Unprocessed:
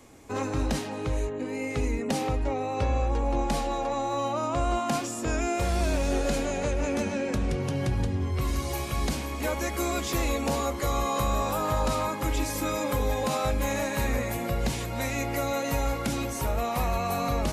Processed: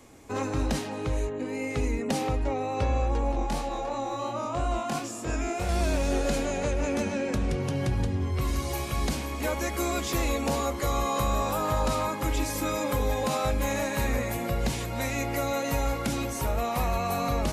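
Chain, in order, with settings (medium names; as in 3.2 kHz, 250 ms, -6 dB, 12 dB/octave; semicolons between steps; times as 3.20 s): 3.32–5.69 s: chorus 2.9 Hz, delay 18 ms, depth 6.3 ms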